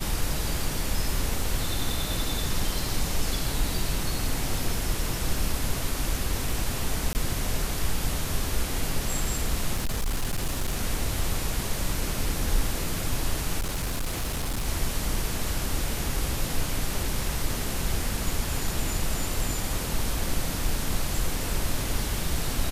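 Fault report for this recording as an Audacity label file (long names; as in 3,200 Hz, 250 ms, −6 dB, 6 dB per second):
7.130000	7.150000	drop-out 19 ms
9.740000	10.780000	clipping −22.5 dBFS
13.590000	14.660000	clipping −24.5 dBFS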